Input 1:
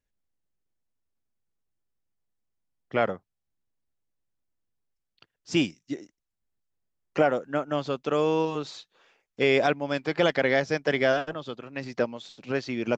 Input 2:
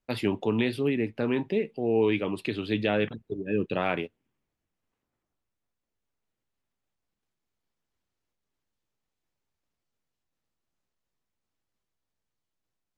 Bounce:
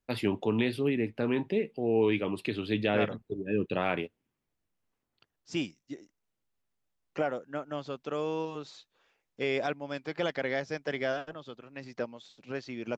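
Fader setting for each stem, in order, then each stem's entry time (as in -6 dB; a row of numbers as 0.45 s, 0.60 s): -8.5 dB, -2.0 dB; 0.00 s, 0.00 s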